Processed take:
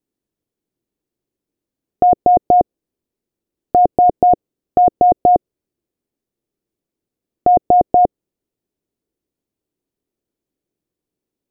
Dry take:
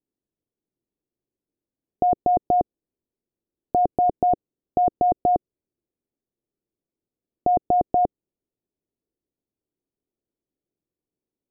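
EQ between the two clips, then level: dynamic bell 550 Hz, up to +4 dB, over -33 dBFS, Q 1.4; +6.0 dB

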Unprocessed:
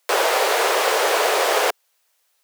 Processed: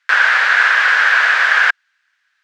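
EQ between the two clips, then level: resonant high-pass 1.6 kHz, resonance Q 7; distance through air 160 m; +3.0 dB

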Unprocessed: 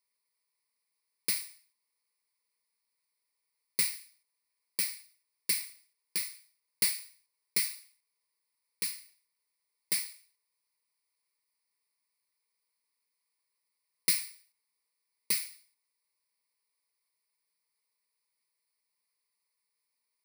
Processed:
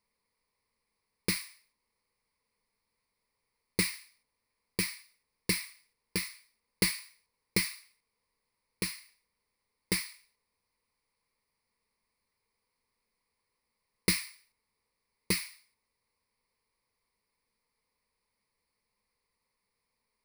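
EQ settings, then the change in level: tilt EQ -3.5 dB/octave; +8.5 dB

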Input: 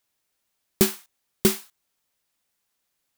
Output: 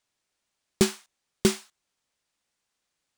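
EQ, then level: Savitzky-Golay filter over 9 samples; -1.0 dB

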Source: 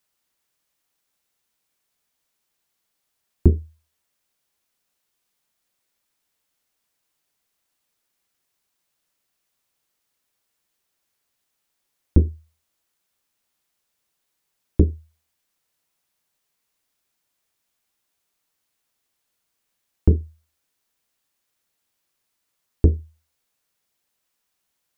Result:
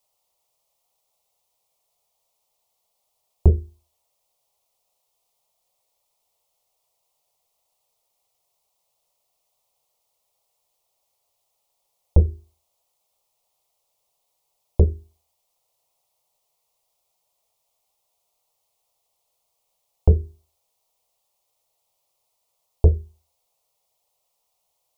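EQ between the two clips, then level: peaking EQ 740 Hz +8 dB 1.5 oct; hum notches 50/100/150/200/250/300/350/400 Hz; static phaser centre 660 Hz, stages 4; +2.5 dB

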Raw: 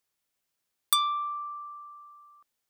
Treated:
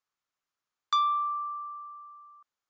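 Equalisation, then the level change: brick-wall FIR low-pass 7.4 kHz; peaking EQ 1.2 kHz +10 dB 0.88 oct; -7.5 dB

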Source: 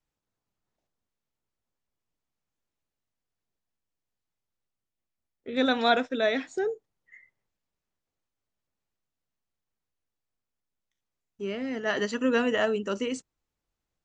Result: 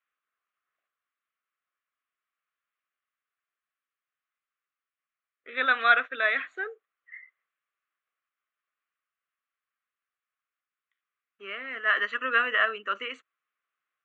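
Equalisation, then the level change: resonant high-pass 1.1 kHz, resonance Q 4.8; distance through air 260 m; static phaser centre 2.2 kHz, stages 4; +7.0 dB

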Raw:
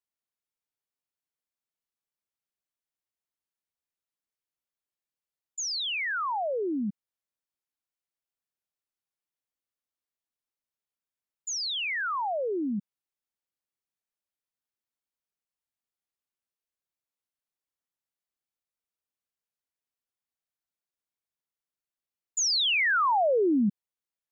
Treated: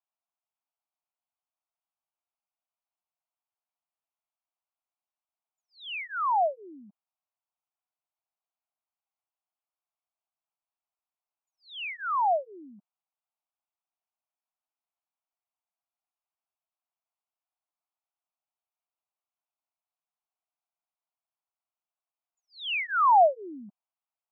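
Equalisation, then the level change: resonant high-pass 660 Hz, resonance Q 3.9; inverse Chebyshev low-pass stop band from 5.1 kHz, stop band 40 dB; static phaser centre 1.8 kHz, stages 6; 0.0 dB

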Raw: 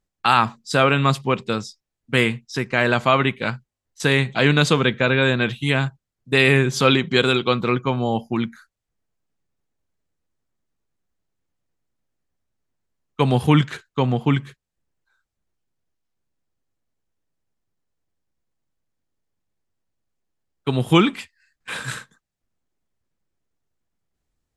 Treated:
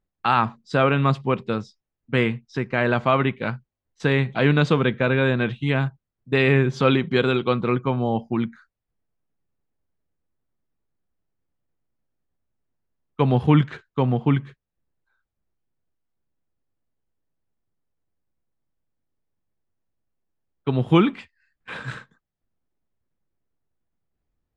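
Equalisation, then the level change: tape spacing loss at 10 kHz 25 dB; 0.0 dB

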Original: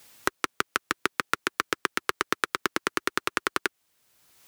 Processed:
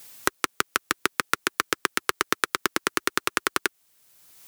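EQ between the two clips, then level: treble shelf 5.8 kHz +7.5 dB; +1.5 dB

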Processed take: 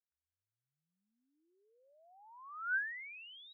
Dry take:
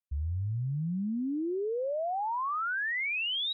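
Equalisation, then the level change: ladder band-pass 1.6 kHz, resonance 85%; -6.5 dB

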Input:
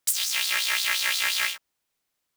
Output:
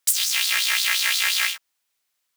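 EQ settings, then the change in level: tilt shelf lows -6.5 dB, about 680 Hz; -2.0 dB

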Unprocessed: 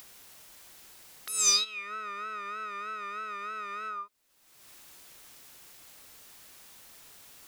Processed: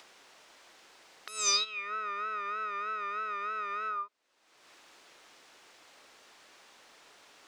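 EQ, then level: three-band isolator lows -18 dB, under 270 Hz, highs -21 dB, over 7.7 kHz; treble shelf 3.3 kHz -8.5 dB; +3.5 dB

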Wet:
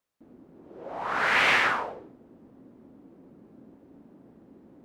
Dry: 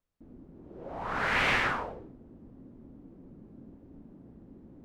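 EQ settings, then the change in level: high-pass 470 Hz 6 dB/octave; +5.5 dB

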